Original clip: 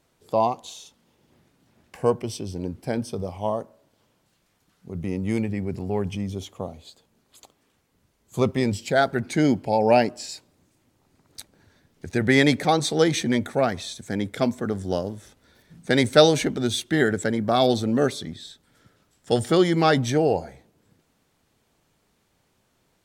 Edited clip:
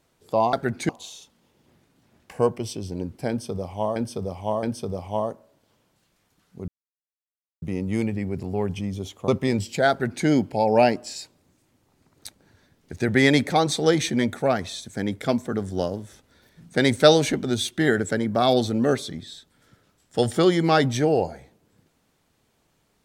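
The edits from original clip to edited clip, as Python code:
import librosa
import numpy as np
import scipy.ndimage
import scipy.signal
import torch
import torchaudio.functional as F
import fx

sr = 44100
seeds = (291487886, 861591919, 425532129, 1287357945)

y = fx.edit(x, sr, fx.repeat(start_s=2.93, length_s=0.67, count=3),
    fx.insert_silence(at_s=4.98, length_s=0.94),
    fx.cut(start_s=6.64, length_s=1.77),
    fx.duplicate(start_s=9.03, length_s=0.36, to_s=0.53), tone=tone)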